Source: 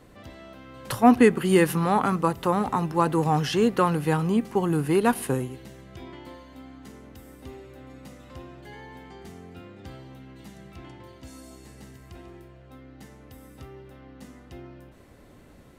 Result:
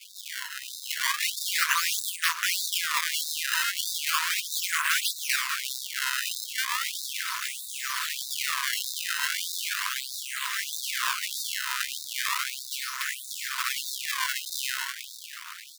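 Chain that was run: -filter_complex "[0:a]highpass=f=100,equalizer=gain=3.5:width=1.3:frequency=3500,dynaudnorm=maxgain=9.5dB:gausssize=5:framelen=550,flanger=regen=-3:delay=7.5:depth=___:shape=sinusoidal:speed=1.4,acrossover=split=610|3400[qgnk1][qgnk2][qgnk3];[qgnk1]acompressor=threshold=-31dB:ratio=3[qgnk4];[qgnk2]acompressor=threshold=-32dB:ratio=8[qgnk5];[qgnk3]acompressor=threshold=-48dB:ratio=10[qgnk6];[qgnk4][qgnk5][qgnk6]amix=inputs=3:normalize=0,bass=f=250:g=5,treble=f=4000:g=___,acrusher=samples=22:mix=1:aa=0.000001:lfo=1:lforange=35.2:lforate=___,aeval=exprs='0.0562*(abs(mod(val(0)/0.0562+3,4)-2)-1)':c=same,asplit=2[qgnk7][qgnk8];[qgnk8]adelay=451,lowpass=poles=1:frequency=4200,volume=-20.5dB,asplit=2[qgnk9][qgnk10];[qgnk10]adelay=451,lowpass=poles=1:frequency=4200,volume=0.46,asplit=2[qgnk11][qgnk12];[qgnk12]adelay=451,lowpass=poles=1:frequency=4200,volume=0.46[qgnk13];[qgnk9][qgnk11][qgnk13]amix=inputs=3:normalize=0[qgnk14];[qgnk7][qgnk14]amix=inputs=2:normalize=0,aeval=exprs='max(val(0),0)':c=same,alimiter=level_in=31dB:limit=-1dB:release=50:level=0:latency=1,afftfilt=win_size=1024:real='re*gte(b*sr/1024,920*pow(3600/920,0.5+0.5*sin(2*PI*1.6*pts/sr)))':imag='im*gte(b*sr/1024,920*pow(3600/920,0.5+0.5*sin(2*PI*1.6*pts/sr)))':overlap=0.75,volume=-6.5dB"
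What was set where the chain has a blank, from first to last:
7.7, -9, 0.36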